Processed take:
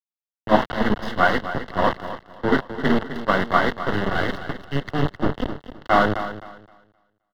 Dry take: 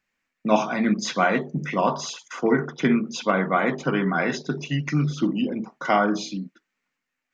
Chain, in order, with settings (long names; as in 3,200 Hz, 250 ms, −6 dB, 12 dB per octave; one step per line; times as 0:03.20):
gain on one half-wave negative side −7 dB
tilt shelving filter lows −3.5 dB, about 1,100 Hz
bit reduction 4 bits
Butterworth band-reject 2,400 Hz, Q 3.6
high-frequency loss of the air 370 metres
repeating echo 261 ms, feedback 43%, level −8 dB
multiband upward and downward expander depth 70%
level +6 dB